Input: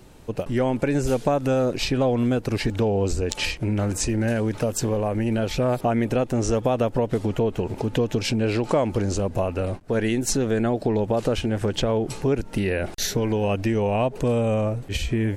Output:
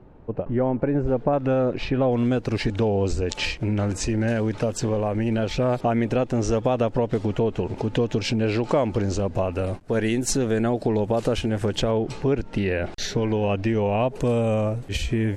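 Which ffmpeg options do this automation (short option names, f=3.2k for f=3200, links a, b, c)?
-af "asetnsamples=n=441:p=0,asendcmd='1.33 lowpass f 2400;2.12 lowpass f 6200;9.53 lowpass f 12000;11.91 lowpass f 4700;14.09 lowpass f 11000',lowpass=1.2k"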